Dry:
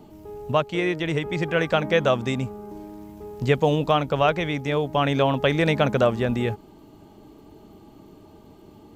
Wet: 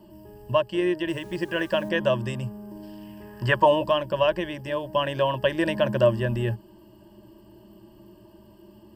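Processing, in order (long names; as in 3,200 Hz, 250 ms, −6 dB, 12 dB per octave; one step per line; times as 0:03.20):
EQ curve with evenly spaced ripples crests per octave 1.3, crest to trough 17 dB
0:01.08–0:01.89: bit-depth reduction 8 bits, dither none
0:02.82–0:03.83: parametric band 4,200 Hz → 760 Hz +14 dB 1.3 octaves
level −6 dB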